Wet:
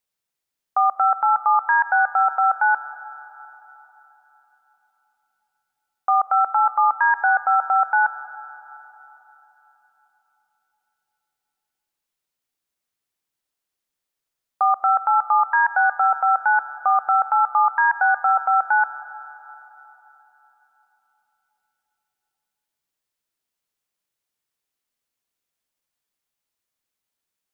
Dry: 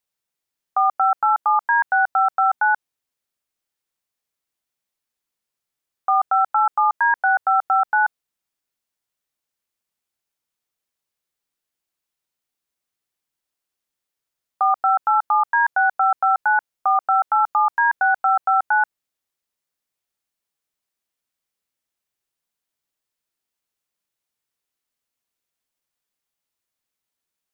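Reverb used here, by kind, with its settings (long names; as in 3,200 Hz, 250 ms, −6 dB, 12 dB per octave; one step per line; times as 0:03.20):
comb and all-pass reverb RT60 3.9 s, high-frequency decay 0.75×, pre-delay 35 ms, DRR 13.5 dB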